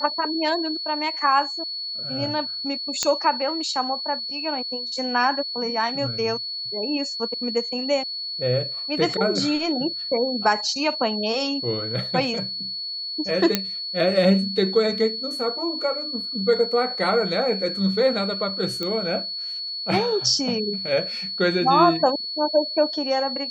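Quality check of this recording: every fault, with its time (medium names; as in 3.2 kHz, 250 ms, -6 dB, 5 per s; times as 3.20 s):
whine 4.4 kHz -28 dBFS
3.03 s: pop -7 dBFS
13.55 s: pop -3 dBFS
18.83 s: pop -14 dBFS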